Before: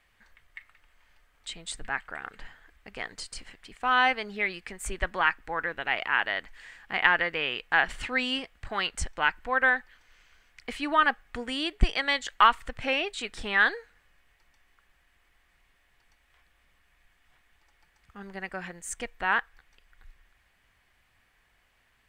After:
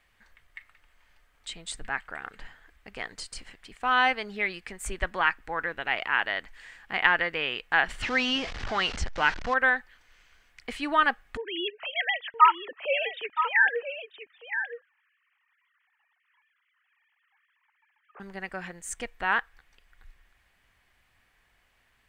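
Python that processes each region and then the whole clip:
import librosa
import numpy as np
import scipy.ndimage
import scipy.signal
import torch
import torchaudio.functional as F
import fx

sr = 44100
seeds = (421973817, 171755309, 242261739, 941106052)

y = fx.chain(x, sr, fx.zero_step(step_db=-30.5),
    fx.lowpass(hz=5800.0, slope=24), at=(8.02, 9.54))
y = fx.chain(y, sr, fx.sine_speech(),
    fx.echo_single(ms=970, db=-9.5), at=(11.37, 18.2))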